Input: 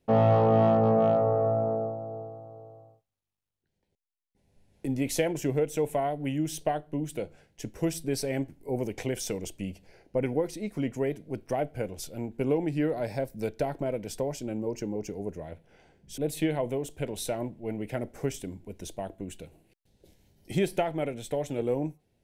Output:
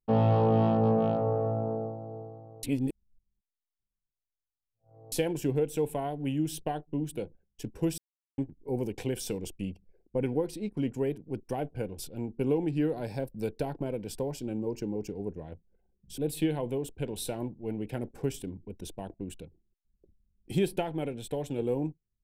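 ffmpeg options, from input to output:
ffmpeg -i in.wav -filter_complex "[0:a]asplit=5[link_01][link_02][link_03][link_04][link_05];[link_01]atrim=end=2.632[link_06];[link_02]atrim=start=2.628:end=5.122,asetpts=PTS-STARTPTS,areverse[link_07];[link_03]atrim=start=5.118:end=7.98,asetpts=PTS-STARTPTS,afade=type=out:start_time=2.858:duration=0.004:curve=hsin[link_08];[link_04]atrim=start=7.98:end=8.38,asetpts=PTS-STARTPTS,volume=0[link_09];[link_05]atrim=start=8.38,asetpts=PTS-STARTPTS,afade=type=in:duration=0.004:curve=hsin[link_10];[link_06][link_07]acrossfade=duration=0.004:curve1=hsin:curve2=hsin[link_11];[link_08][link_09][link_10]concat=n=3:v=0:a=1[link_12];[link_11][link_12]acrossfade=duration=0.004:curve1=hsin:curve2=hsin,anlmdn=0.00631,equalizer=frequency=630:width_type=o:width=0.33:gain=-10,equalizer=frequency=1250:width_type=o:width=0.33:gain=-7,equalizer=frequency=2000:width_type=o:width=0.33:gain=-10,equalizer=frequency=6300:width_type=o:width=0.33:gain=-8" out.wav

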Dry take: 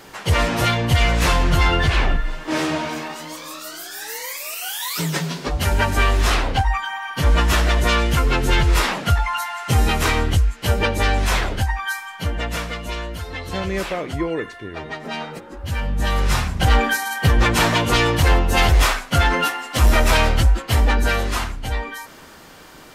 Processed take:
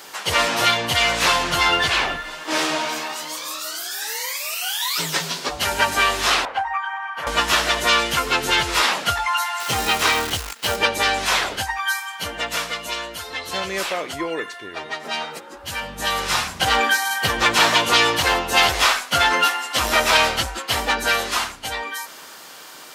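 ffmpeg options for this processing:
ffmpeg -i in.wav -filter_complex "[0:a]asettb=1/sr,asplit=3[link_01][link_02][link_03];[link_01]atrim=end=6.454[link_04];[link_02]atrim=start=6.45:end=7.27,asetpts=PTS-STARTPTS,afade=type=in:duration=0.004:curve=qsin,afade=type=out:start_time=0.816:duration=0.004:curve=qsin,acrossover=split=560 2100:gain=0.158 1 0.0794[link_05][link_06][link_07];[link_05][link_06][link_07]amix=inputs=3:normalize=0[link_08];[link_03]atrim=start=7.266[link_09];[link_04][link_08]acrossfade=duration=0.004:curve1=hsin:curve2=qsin[link_10];[link_10][link_09]acrossfade=duration=0.004:curve1=qsin:curve2=hsin,asettb=1/sr,asplit=3[link_11][link_12][link_13];[link_11]atrim=end=9.604[link_14];[link_12]atrim=start=9.6:end=10.77,asetpts=PTS-STARTPTS,afade=type=in:duration=0.004:curve=qsin,afade=type=out:start_time=1.166:duration=0.004:curve=qsin,acrusher=bits=6:dc=4:mix=0:aa=0.000001[link_15];[link_13]atrim=start=10.766[link_16];[link_14][link_15]acrossfade=duration=0.004:curve1=hsin:curve2=qsin[link_17];[link_17][link_16]acrossfade=duration=0.004:curve1=qsin:curve2=hsin,acrossover=split=5500[link_18][link_19];[link_19]acompressor=threshold=-36dB:ratio=4:attack=1:release=60[link_20];[link_18][link_20]amix=inputs=2:normalize=0,highpass=frequency=1400:poles=1,equalizer=frequency=2000:width=1.2:gain=-4,volume=8dB" out.wav

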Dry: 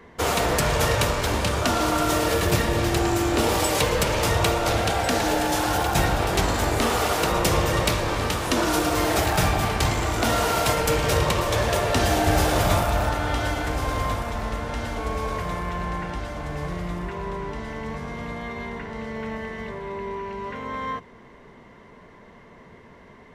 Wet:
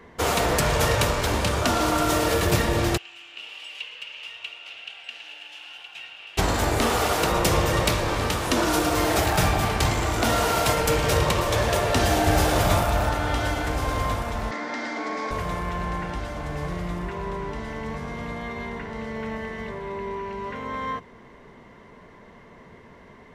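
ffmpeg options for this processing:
ffmpeg -i in.wav -filter_complex "[0:a]asplit=3[link_01][link_02][link_03];[link_01]afade=type=out:start_time=2.96:duration=0.02[link_04];[link_02]bandpass=frequency=2800:width_type=q:width=9.8,afade=type=in:start_time=2.96:duration=0.02,afade=type=out:start_time=6.37:duration=0.02[link_05];[link_03]afade=type=in:start_time=6.37:duration=0.02[link_06];[link_04][link_05][link_06]amix=inputs=3:normalize=0,asettb=1/sr,asplit=3[link_07][link_08][link_09];[link_07]atrim=end=14.514[link_10];[link_08]atrim=start=14.51:end=15.31,asetpts=PTS-STARTPTS,afade=type=in:duration=0.004:curve=qsin,afade=type=out:start_time=0.796:duration=0.004:curve=qsin,highpass=frequency=240:width=0.5412,highpass=frequency=240:width=1.3066,equalizer=frequency=280:width_type=q:width=4:gain=7,equalizer=frequency=470:width_type=q:width=4:gain=-5,equalizer=frequency=2000:width_type=q:width=4:gain=9,equalizer=frequency=2800:width_type=q:width=4:gain=-7,equalizer=frequency=4800:width_type=q:width=4:gain=4,lowpass=frequency=6700:width=0.5412,lowpass=frequency=6700:width=1.3066[link_11];[link_09]atrim=start=15.306[link_12];[link_10][link_11]acrossfade=duration=0.004:curve1=hsin:curve2=qsin[link_13];[link_13][link_12]acrossfade=duration=0.004:curve1=qsin:curve2=hsin" out.wav

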